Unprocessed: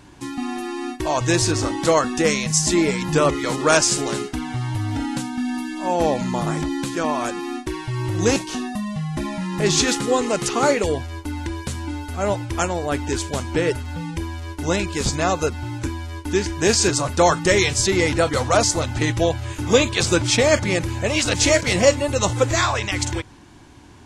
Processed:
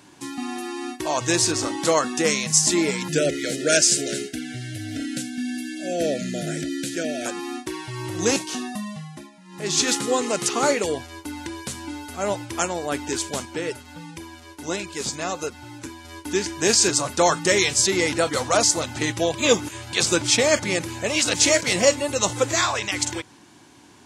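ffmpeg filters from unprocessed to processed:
-filter_complex "[0:a]asettb=1/sr,asplit=3[a][b][c];[a]atrim=end=3.084[d];[b]atrim=start=3.08:end=7.26,asetpts=PTS-STARTPTS,afade=t=in:d=0.004:c=qsin,afade=t=out:st=4.176:d=0.004:c=qsin,asuperstop=centerf=1000:order=12:qfactor=1.4[e];[c]atrim=start=7.256[f];[d][e]acrossfade=d=0.004:c1=hsin:c2=qsin[g];[g][f]acrossfade=d=0.004:c1=qsin:c2=hsin,asettb=1/sr,asplit=3[h][i][j];[h]atrim=end=13.454[k];[i]atrim=start=13.45:end=16.05,asetpts=PTS-STARTPTS,afade=t=in:d=0.004:c=qsin,afade=t=out:st=2.596:d=0.004:c=qsin,flanger=delay=0.7:depth=4.9:regen=76:speed=1.4:shape=triangular[l];[j]atrim=start=16.046[m];[k][l]acrossfade=d=0.004:c1=hsin:c2=qsin[n];[n][m]acrossfade=d=0.004:c1=qsin:c2=hsin,asplit=5[o][p][q][r][s];[o]atrim=end=9.31,asetpts=PTS-STARTPTS,afade=t=out:st=8.81:d=0.5:silence=0.112202[t];[p]atrim=start=9.31:end=9.44,asetpts=PTS-STARTPTS,volume=-19dB[u];[q]atrim=start=9.44:end=19.342,asetpts=PTS-STARTPTS,afade=t=in:d=0.5:silence=0.112202[v];[r]atrim=start=19.338:end=19.932,asetpts=PTS-STARTPTS,areverse[w];[s]atrim=start=19.928[x];[t][u][v]concat=n=3:v=0:a=1[y];[y][w]acrossfade=d=0.004:c1=hsin:c2=hsin[z];[z][x]acrossfade=d=0.004:c1=hsin:c2=hsin,highpass=160,highshelf=f=3.8k:g=6.5,volume=-3dB"

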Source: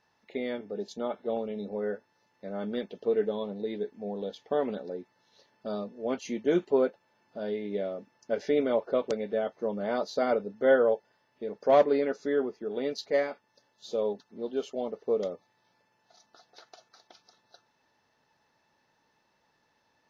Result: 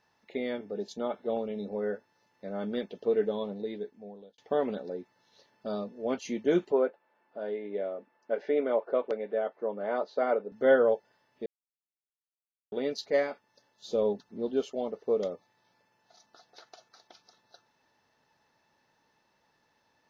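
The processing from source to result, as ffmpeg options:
-filter_complex "[0:a]asettb=1/sr,asplit=3[a][b][c];[a]atrim=end=6.724[d];[b]atrim=start=6.72:end=10.52,asetpts=PTS-STARTPTS,afade=t=in:d=0.004:c=qsin,afade=t=out:st=3.796:d=0.004:c=qsin,highpass=330,lowpass=2.2k[e];[c]atrim=start=10.516[f];[d][e]acrossfade=d=0.004:c1=hsin:c2=qsin[g];[g][f]acrossfade=d=0.004:c1=qsin:c2=hsin,asettb=1/sr,asplit=3[h][i][j];[h]atrim=end=13.904[k];[i]atrim=start=13.9:end=14.62,asetpts=PTS-STARTPTS,afade=t=in:d=0.004:c=qsin,afade=t=out:st=0.716:d=0.004:c=qsin,lowshelf=f=260:g=8[l];[j]atrim=start=14.616[m];[k][l]acrossfade=d=0.004:c1=hsin:c2=qsin[n];[n][m]acrossfade=d=0.004:c1=qsin:c2=hsin,asplit=4[o][p][q][r];[o]atrim=end=4.38,asetpts=PTS-STARTPTS,afade=t=out:st=3.47:d=0.91[s];[p]atrim=start=4.38:end=11.46,asetpts=PTS-STARTPTS,afade=t=in:d=0.004:c=hsin,afade=t=out:st=7.076:d=0.004:c=hsin[t];[q]atrim=start=11.46:end=12.72,asetpts=PTS-STARTPTS,volume=0[u];[r]atrim=start=12.72,asetpts=PTS-STARTPTS,afade=t=in:d=0.004:c=hsin[v];[s][t][u][v]concat=n=4:v=0:a=1"

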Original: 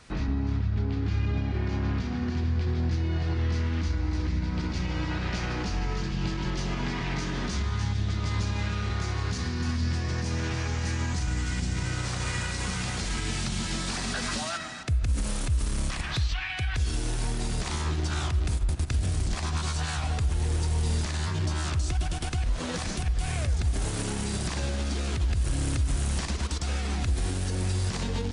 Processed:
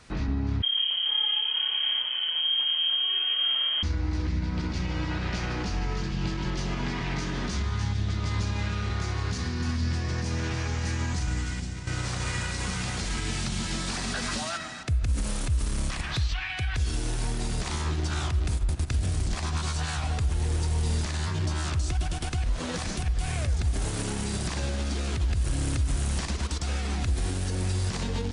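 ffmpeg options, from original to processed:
-filter_complex "[0:a]asettb=1/sr,asplit=3[a][b][c];[a]atrim=end=0.624[d];[b]atrim=start=0.62:end=3.83,asetpts=PTS-STARTPTS,afade=t=in:d=0.004:c=qsin,afade=t=out:st=3.206:d=0.004:c=qsin,lowpass=f=2.8k:t=q:w=0.5098,lowpass=f=2.8k:t=q:w=0.6013,lowpass=f=2.8k:t=q:w=0.9,lowpass=f=2.8k:t=q:w=2.563,afreqshift=-3300[e];[c]atrim=start=3.826[f];[d][e]acrossfade=d=0.004:c1=hsin:c2=qsin[g];[g][f]acrossfade=d=0.004:c1=qsin:c2=hsin,asplit=2[h][i];[h]atrim=end=11.87,asetpts=PTS-STARTPTS,afade=t=out:st=11.35:d=0.52:silence=0.316228[j];[i]atrim=start=11.87,asetpts=PTS-STARTPTS,afade=t=in:d=0.004:c=hsin:silence=0.316228[k];[j][k]concat=n=2:v=0:a=1"

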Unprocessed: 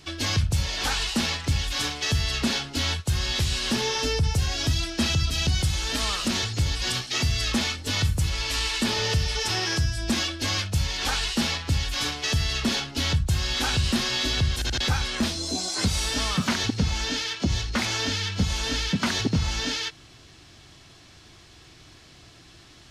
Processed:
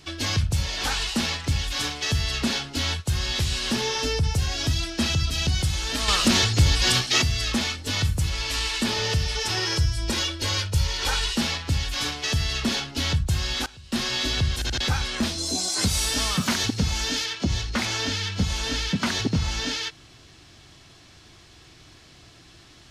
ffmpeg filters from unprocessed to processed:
-filter_complex "[0:a]asettb=1/sr,asplit=3[a][b][c];[a]atrim=end=6.084[d];[b]atrim=start=6.08:end=7.22,asetpts=PTS-STARTPTS,afade=t=in:d=0.004:c=qsin,afade=t=out:st=1.136:d=0.004:c=qsin,acontrast=72[e];[c]atrim=start=7.216[f];[d][e]acrossfade=d=0.004:c1=hsin:c2=qsin[g];[g][f]acrossfade=d=0.004:c1=qsin:c2=hsin,asettb=1/sr,asplit=3[h][i][j];[h]atrim=end=9.574[k];[i]atrim=start=9.57:end=11.36,asetpts=PTS-STARTPTS,afade=t=in:d=0.004:c=qsin,afade=t=out:st=1.786:d=0.004:c=qsin,aecho=1:1:2.1:0.53,atrim=end_sample=78939[l];[j]atrim=start=11.356[m];[k][l]acrossfade=d=0.004:c1=hsin:c2=qsin[n];[n][m]acrossfade=d=0.004:c1=qsin:c2=hsin,asettb=1/sr,asplit=3[o][p][q];[o]atrim=end=15.384[r];[p]atrim=start=15.38:end=17.26,asetpts=PTS-STARTPTS,afade=t=in:d=0.004:c=qsin,afade=t=out:st=1.876:d=0.004:c=qsin,highshelf=f=8.3k:g=11.5[s];[q]atrim=start=17.256[t];[r][s]acrossfade=d=0.004:c1=hsin:c2=qsin[u];[u][t]acrossfade=d=0.004:c1=qsin:c2=hsin,asplit=3[v][w][x];[v]atrim=end=13.66,asetpts=PTS-STARTPTS,afade=t=out:st=13.35:d=0.31:c=log:silence=0.0794328[y];[w]atrim=start=13.66:end=13.92,asetpts=PTS-STARTPTS,volume=-22dB[z];[x]atrim=start=13.92,asetpts=PTS-STARTPTS,afade=t=in:d=0.31:c=log:silence=0.0794328[aa];[y][z][aa]concat=n=3:v=0:a=1"

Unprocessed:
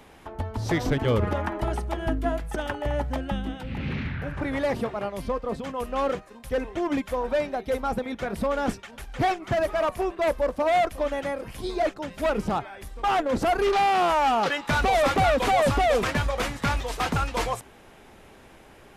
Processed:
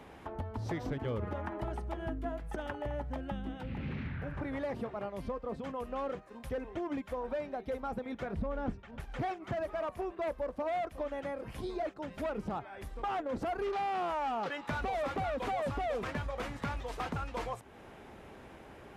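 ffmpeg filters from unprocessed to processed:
-filter_complex "[0:a]asettb=1/sr,asplit=3[a][b][c];[a]atrim=end=8.344[d];[b]atrim=start=8.34:end=9,asetpts=PTS-STARTPTS,afade=t=in:d=0.004:c=qsin,afade=t=out:st=0.656:d=0.004:c=qsin,aemphasis=mode=reproduction:type=bsi[e];[c]atrim=start=8.996[f];[d][e]acrossfade=d=0.004:c1=hsin:c2=qsin[g];[g][f]acrossfade=d=0.004:c1=qsin:c2=hsin,highpass=41,highshelf=f=3.1k:g=-10,acompressor=threshold=-39dB:ratio=2.5"

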